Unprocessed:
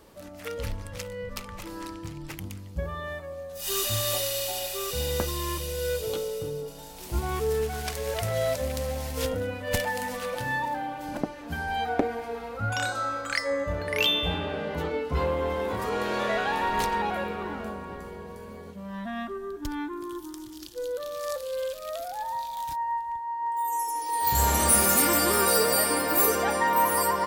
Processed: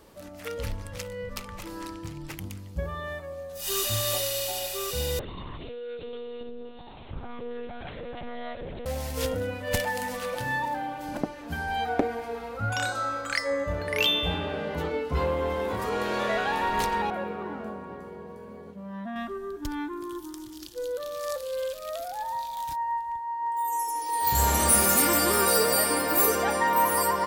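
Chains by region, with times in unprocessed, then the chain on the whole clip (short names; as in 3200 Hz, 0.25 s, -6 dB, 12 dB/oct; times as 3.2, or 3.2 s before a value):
5.19–8.86 dynamic EQ 140 Hz, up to +7 dB, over -51 dBFS, Q 2.3 + compressor 2.5:1, threshold -37 dBFS + monotone LPC vocoder at 8 kHz 240 Hz
17.1–19.16 HPF 120 Hz + high shelf 2100 Hz -11.5 dB
whole clip: dry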